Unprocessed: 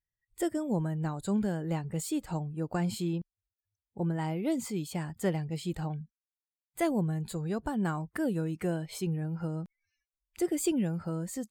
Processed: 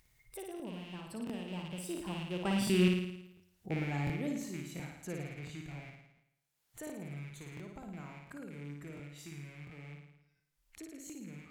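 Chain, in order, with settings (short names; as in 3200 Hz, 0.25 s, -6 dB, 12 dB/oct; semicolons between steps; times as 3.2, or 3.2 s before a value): rattling part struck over -36 dBFS, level -29 dBFS; Doppler pass-by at 3.03, 37 m/s, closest 7.8 m; upward compressor, threshold -48 dBFS; flutter echo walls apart 9.5 m, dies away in 0.83 s; crackling interface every 0.70 s, samples 1024, repeat, from 0.55; gain +6 dB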